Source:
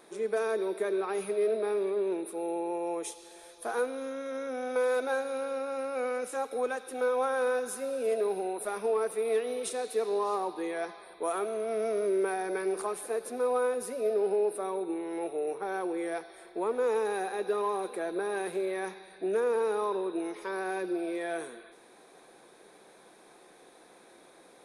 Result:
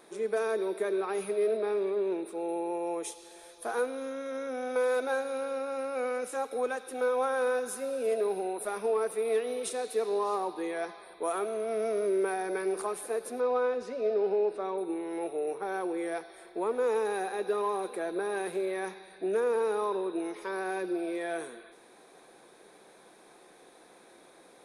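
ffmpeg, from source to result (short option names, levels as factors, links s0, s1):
-filter_complex "[0:a]asettb=1/sr,asplit=3[s0][s1][s2];[s0]atrim=end=1.574[s3];[s1]atrim=start=1.57:end=2.49,asetpts=PTS-STARTPTS,afade=t=in:d=0.004:c=qsin,afade=t=out:st=0.916:d=0.004:c=qsin,equalizer=f=11000:w=2.5:g=-14.5[s4];[s2]atrim=start=2.486[s5];[s3][s4]acrossfade=d=0.004:c1=hsin:c2=qsin[s6];[s6][s5]acrossfade=d=0.004:c1=qsin:c2=hsin,asettb=1/sr,asplit=3[s7][s8][s9];[s7]atrim=end=13.404[s10];[s8]atrim=start=13.4:end=14.78,asetpts=PTS-STARTPTS,afade=t=in:d=0.004:c=qsin,afade=t=out:st=1.376:d=0.004:c=qsin,lowpass=f=5800:w=0.5412,lowpass=f=5800:w=1.3066[s11];[s9]atrim=start=14.776[s12];[s10][s11]acrossfade=d=0.004:c1=hsin:c2=qsin[s13];[s13][s12]acrossfade=d=0.004:c1=qsin:c2=hsin"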